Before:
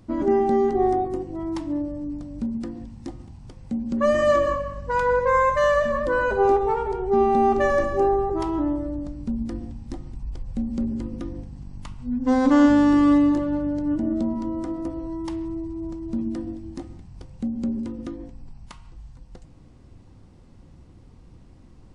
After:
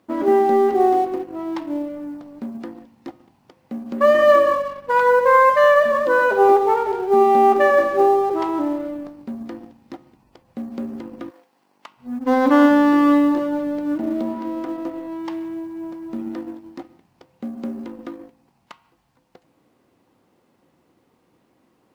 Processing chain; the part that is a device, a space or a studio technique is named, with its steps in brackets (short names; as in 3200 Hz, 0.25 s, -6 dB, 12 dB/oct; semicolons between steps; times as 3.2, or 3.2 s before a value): phone line with mismatched companding (BPF 350–3400 Hz; G.711 law mismatch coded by A); 11.29–11.96 HPF 860 Hz -> 340 Hz 12 dB/oct; gain +7 dB